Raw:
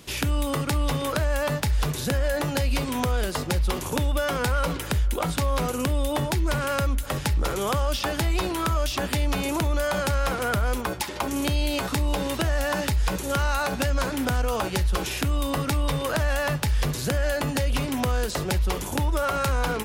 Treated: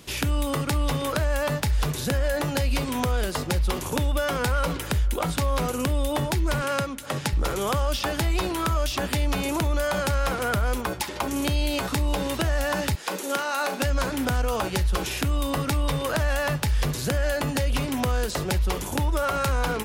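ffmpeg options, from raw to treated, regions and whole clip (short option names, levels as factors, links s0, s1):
-filter_complex "[0:a]asettb=1/sr,asplit=3[s0][s1][s2];[s0]atrim=end=6.624[s3];[s1]atrim=start=6.62:end=7.33,asetpts=PTS-STARTPTS,afade=t=in:d=0.004:c=qsin,afade=t=out:st=0.706:d=0.004:c=qsin,highpass=f=110:w=0.5412,highpass=f=110:w=1.3066,highshelf=f=8400:g=7.5,adynamicsmooth=sensitivity=3.5:basefreq=7200[s4];[s2]atrim=start=7.326[s5];[s3][s4]acrossfade=d=0.004:c1=hsin:c2=qsin[s6];[s6][s5]acrossfade=d=0.004:c1=qsin:c2=hsin,asettb=1/sr,asplit=3[s7][s8][s9];[s7]atrim=end=12.954[s10];[s8]atrim=start=12.95:end=13.82,asetpts=PTS-STARTPTS,afade=t=in:d=0.004:c=qsin,afade=t=out:st=0.866:d=0.004:c=qsin,highpass=f=240:w=0.5412,highpass=f=240:w=1.3066,asplit=2[s11][s12];[s12]adelay=37,volume=0.282[s13];[s11][s13]amix=inputs=2:normalize=0,atrim=end_sample=38367[s14];[s9]atrim=start=13.816[s15];[s10][s14]acrossfade=d=0.004:c1=hsin:c2=qsin[s16];[s16][s15]acrossfade=d=0.004:c1=qsin:c2=hsin"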